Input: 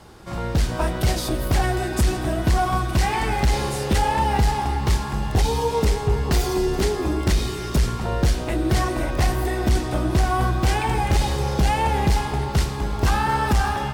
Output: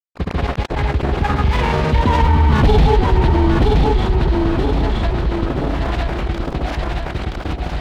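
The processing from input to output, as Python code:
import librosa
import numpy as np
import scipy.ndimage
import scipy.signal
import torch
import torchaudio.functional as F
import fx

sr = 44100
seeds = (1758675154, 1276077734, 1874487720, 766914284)

p1 = fx.doppler_pass(x, sr, speed_mps=36, closest_m=12.0, pass_at_s=4.69)
p2 = scipy.signal.sosfilt(scipy.signal.butter(6, 4000.0, 'lowpass', fs=sr, output='sos'), p1)
p3 = fx.low_shelf(p2, sr, hz=320.0, db=6.0)
p4 = fx.rider(p3, sr, range_db=3, speed_s=2.0)
p5 = p3 + (p4 * librosa.db_to_amplitude(-2.5))
p6 = np.sign(p5) * np.maximum(np.abs(p5) - 10.0 ** (-31.0 / 20.0), 0.0)
p7 = fx.stretch_vocoder(p6, sr, factor=0.56)
p8 = fx.granulator(p7, sr, seeds[0], grain_ms=100.0, per_s=20.0, spray_ms=100.0, spread_st=0)
p9 = 10.0 ** (-10.5 / 20.0) * (np.abs((p8 / 10.0 ** (-10.5 / 20.0) + 3.0) % 4.0 - 2.0) - 1.0)
p10 = p9 + fx.echo_feedback(p9, sr, ms=973, feedback_pct=20, wet_db=-6.5, dry=0)
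p11 = fx.env_flatten(p10, sr, amount_pct=70)
y = p11 * librosa.db_to_amplitude(4.5)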